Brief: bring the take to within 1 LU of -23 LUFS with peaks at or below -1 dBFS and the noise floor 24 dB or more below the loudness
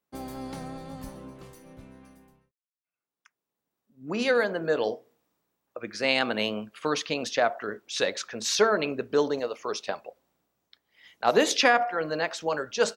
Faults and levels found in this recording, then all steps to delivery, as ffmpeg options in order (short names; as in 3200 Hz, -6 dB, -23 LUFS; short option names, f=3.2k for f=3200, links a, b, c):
loudness -27.0 LUFS; peak -6.5 dBFS; loudness target -23.0 LUFS
-> -af "volume=4dB"